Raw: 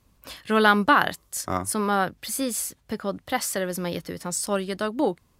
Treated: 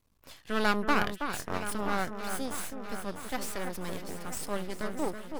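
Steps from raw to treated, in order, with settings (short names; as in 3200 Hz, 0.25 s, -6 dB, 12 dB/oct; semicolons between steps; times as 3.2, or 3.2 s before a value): half-wave rectifier; on a send: echo with dull and thin repeats by turns 0.325 s, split 2200 Hz, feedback 78%, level -7 dB; on the sum: gain -6 dB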